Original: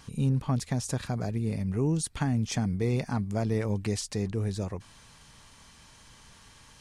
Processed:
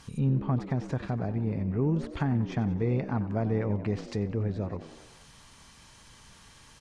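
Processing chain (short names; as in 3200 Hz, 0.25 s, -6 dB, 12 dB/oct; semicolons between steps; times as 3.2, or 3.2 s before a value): tracing distortion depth 0.026 ms; frequency-shifting echo 93 ms, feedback 58%, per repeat +70 Hz, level -14 dB; treble ducked by the level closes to 2000 Hz, closed at -27 dBFS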